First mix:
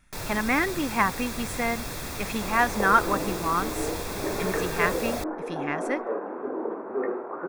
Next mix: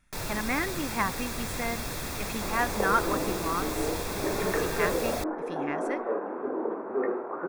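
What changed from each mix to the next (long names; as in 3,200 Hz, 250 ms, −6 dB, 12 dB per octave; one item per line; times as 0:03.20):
speech −5.5 dB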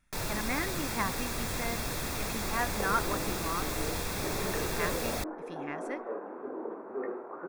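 speech −4.5 dB
second sound −7.5 dB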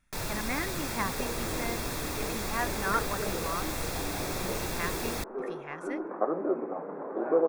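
second sound: entry −1.60 s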